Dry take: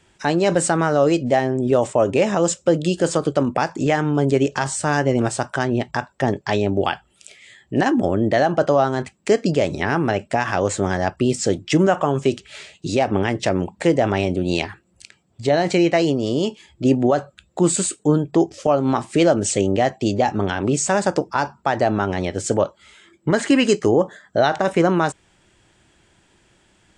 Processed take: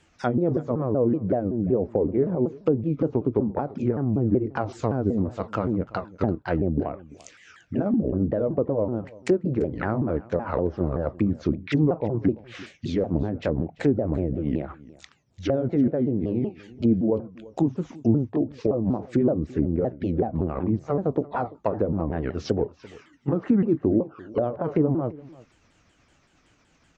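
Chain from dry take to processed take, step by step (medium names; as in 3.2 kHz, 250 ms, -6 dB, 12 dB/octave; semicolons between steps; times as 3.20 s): sawtooth pitch modulation -6.5 st, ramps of 189 ms; low-pass that closes with the level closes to 510 Hz, closed at -16 dBFS; treble shelf 8.3 kHz -3.5 dB; on a send: delay 340 ms -21 dB; on the sum: trim -3 dB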